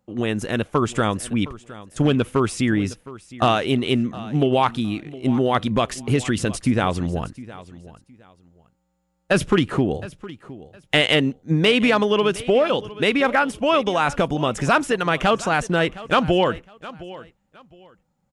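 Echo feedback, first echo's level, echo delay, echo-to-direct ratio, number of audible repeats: 24%, -18.0 dB, 0.713 s, -18.0 dB, 2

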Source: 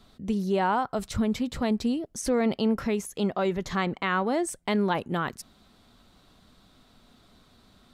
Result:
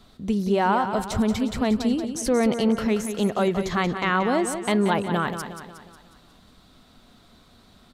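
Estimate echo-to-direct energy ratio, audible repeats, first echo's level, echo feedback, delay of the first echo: -8.0 dB, 5, -9.0 dB, 50%, 0.181 s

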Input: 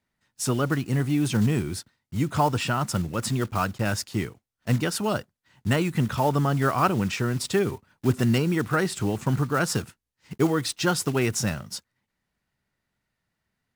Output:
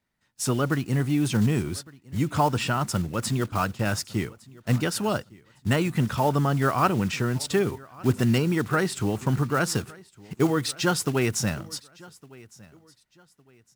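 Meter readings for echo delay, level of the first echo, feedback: 1.159 s, -23.0 dB, 30%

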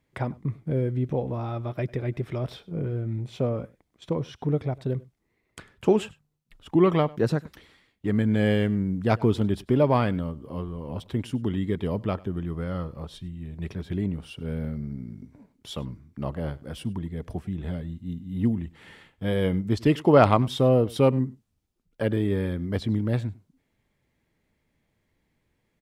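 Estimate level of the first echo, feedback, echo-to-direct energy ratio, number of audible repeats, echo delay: -22.5 dB, no steady repeat, -22.5 dB, 1, 99 ms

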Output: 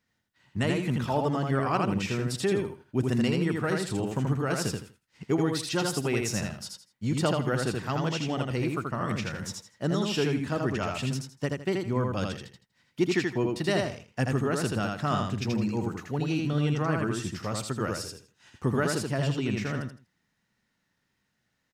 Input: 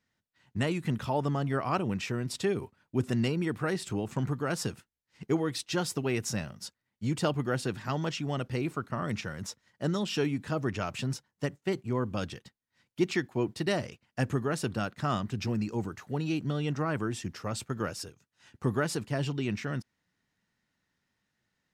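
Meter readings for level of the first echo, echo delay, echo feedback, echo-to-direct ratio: -3.0 dB, 81 ms, 24%, -2.5 dB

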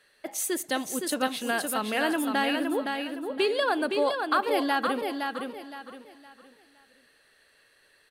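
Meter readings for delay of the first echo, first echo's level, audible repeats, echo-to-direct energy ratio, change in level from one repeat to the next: 0.396 s, -23.0 dB, 5, -4.5 dB, no steady repeat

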